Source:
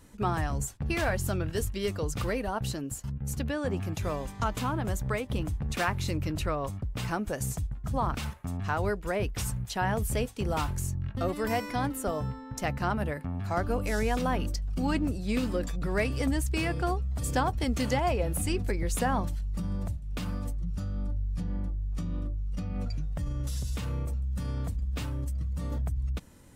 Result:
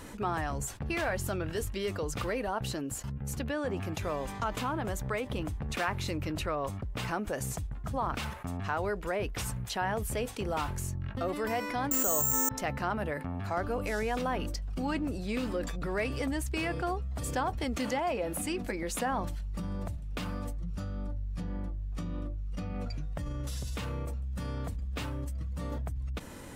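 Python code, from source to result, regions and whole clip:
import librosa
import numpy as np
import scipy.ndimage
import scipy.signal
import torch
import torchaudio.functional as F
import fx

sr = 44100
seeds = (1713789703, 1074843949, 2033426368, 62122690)

y = fx.chain(x, sr, fx.high_shelf(hz=2000.0, db=7.0),
    fx.resample_bad(factor=6, down='filtered', up='zero_stuff'),
    fx.env_flatten(amount_pct=100), at=(11.91, 12.49))
y = fx.chain(y, sr, fx.low_shelf_res(hz=160.0, db=-7.5, q=1.5),
    fx.notch(hz=410.0, q=5.4), at=(17.76, 19.12))
y = fx.bass_treble(y, sr, bass_db=-7, treble_db=-5)
y = fx.env_flatten(y, sr, amount_pct=50)
y = y * 10.0 ** (-5.0 / 20.0)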